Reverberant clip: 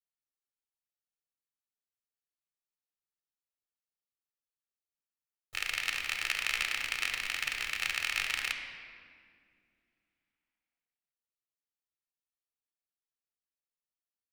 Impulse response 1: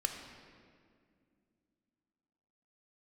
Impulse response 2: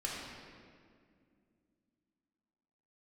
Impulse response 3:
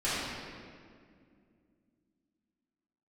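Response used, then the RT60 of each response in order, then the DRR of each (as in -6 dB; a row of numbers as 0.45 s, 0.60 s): 1; 2.2 s, 2.2 s, 2.2 s; 4.0 dB, -4.5 dB, -12.5 dB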